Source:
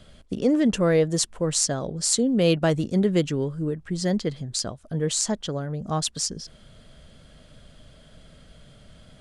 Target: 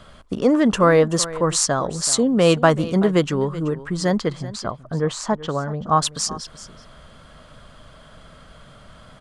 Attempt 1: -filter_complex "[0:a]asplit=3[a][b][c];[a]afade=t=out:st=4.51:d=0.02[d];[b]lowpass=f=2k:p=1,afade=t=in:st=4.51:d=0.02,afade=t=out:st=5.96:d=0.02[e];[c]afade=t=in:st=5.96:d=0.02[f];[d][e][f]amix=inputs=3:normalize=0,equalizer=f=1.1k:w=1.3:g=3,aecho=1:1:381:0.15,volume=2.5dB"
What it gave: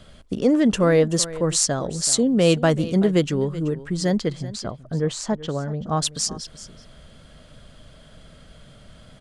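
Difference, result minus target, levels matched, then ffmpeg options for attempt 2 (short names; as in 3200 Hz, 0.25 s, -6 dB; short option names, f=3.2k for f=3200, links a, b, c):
1000 Hz band -6.5 dB
-filter_complex "[0:a]asplit=3[a][b][c];[a]afade=t=out:st=4.51:d=0.02[d];[b]lowpass=f=2k:p=1,afade=t=in:st=4.51:d=0.02,afade=t=out:st=5.96:d=0.02[e];[c]afade=t=in:st=5.96:d=0.02[f];[d][e][f]amix=inputs=3:normalize=0,equalizer=f=1.1k:w=1.3:g=14,aecho=1:1:381:0.15,volume=2.5dB"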